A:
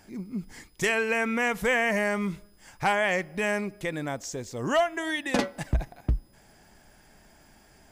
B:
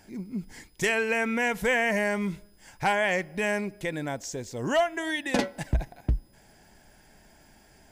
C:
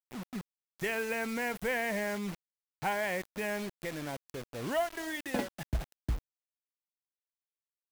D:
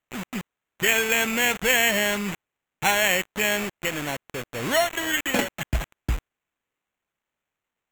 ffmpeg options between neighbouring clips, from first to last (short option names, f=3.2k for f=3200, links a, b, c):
-af "bandreject=f=1.2k:w=6.3"
-af "equalizer=f=6.6k:t=o:w=1.5:g=-10,acrusher=bits=5:mix=0:aa=0.000001,volume=-7dB"
-af "equalizer=f=2.7k:w=0.74:g=10,acrusher=samples=9:mix=1:aa=0.000001,volume=7dB"